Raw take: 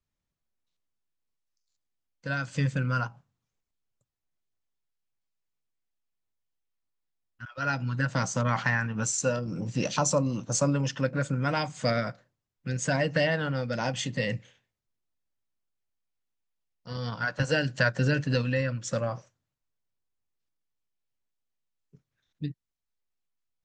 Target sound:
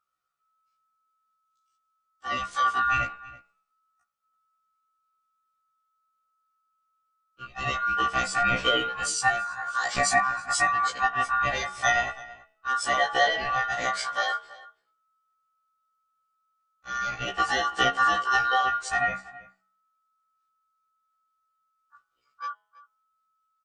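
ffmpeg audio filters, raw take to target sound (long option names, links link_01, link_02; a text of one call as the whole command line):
ffmpeg -i in.wav -filter_complex "[0:a]aecho=1:1:1.7:0.66,bandreject=frequency=92.48:width_type=h:width=4,bandreject=frequency=184.96:width_type=h:width=4,bandreject=frequency=277.44:width_type=h:width=4,bandreject=frequency=369.92:width_type=h:width=4,bandreject=frequency=462.4:width_type=h:width=4,bandreject=frequency=554.88:width_type=h:width=4,bandreject=frequency=647.36:width_type=h:width=4,bandreject=frequency=739.84:width_type=h:width=4,bandreject=frequency=832.32:width_type=h:width=4,bandreject=frequency=924.8:width_type=h:width=4,bandreject=frequency=1017.28:width_type=h:width=4,bandreject=frequency=1109.76:width_type=h:width=4,bandreject=frequency=1202.24:width_type=h:width=4,bandreject=frequency=1294.72:width_type=h:width=4,bandreject=frequency=1387.2:width_type=h:width=4,bandreject=frequency=1479.68:width_type=h:width=4,bandreject=frequency=1572.16:width_type=h:width=4,bandreject=frequency=1664.64:width_type=h:width=4,bandreject=frequency=1757.12:width_type=h:width=4,bandreject=frequency=1849.6:width_type=h:width=4,bandreject=frequency=1942.08:width_type=h:width=4,bandreject=frequency=2034.56:width_type=h:width=4,bandreject=frequency=2127.04:width_type=h:width=4,bandreject=frequency=2219.52:width_type=h:width=4,bandreject=frequency=2312:width_type=h:width=4,bandreject=frequency=2404.48:width_type=h:width=4,bandreject=frequency=2496.96:width_type=h:width=4,aeval=exprs='val(0)*sin(2*PI*1300*n/s)':channel_layout=same,asplit=2[link_01][link_02];[link_02]adelay=326.5,volume=-19dB,highshelf=frequency=4000:gain=-7.35[link_03];[link_01][link_03]amix=inputs=2:normalize=0,afftfilt=real='re*1.73*eq(mod(b,3),0)':imag='im*1.73*eq(mod(b,3),0)':win_size=2048:overlap=0.75,volume=4.5dB" out.wav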